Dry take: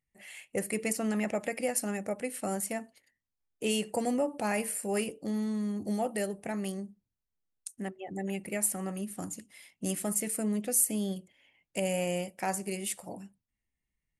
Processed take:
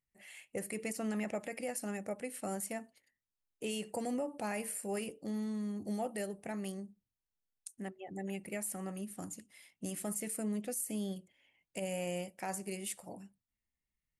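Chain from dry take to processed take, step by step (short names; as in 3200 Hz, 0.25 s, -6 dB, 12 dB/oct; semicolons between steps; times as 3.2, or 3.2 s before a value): limiter -22.5 dBFS, peak gain reduction 8.5 dB; gain -5.5 dB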